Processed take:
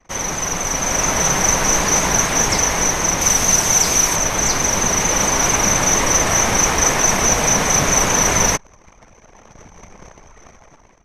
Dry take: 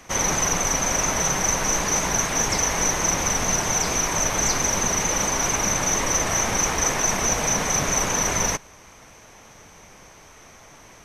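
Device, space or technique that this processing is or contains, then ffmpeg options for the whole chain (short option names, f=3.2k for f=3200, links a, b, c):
voice memo with heavy noise removal: -filter_complex "[0:a]asettb=1/sr,asplit=3[a][b][c];[a]atrim=end=3.214[d];[b]atrim=start=3.21:end=4.16,asetpts=PTS-STARTPTS,afade=t=in:d=0.004:c=qsin,afade=t=out:st=0.946:d=0.004:c=qsin,highshelf=f=4.5k:g=8.5[e];[c]atrim=start=4.156[f];[d][e]acrossfade=d=0.004:c1=hsin:c2=qsin[g];[g][f]acrossfade=d=0.004:c1=qsin:c2=hsin,anlmdn=0.0631,dynaudnorm=f=360:g=5:m=14.5dB,volume=-1dB"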